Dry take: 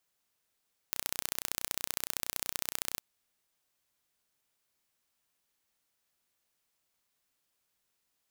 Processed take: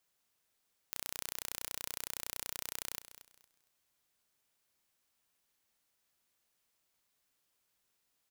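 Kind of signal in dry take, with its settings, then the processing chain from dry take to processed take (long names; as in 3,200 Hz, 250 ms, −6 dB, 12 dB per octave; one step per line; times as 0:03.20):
impulse train 30.7 per second, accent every 2, −4 dBFS 2.07 s
brickwall limiter −11 dBFS
repeating echo 230 ms, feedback 25%, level −14 dB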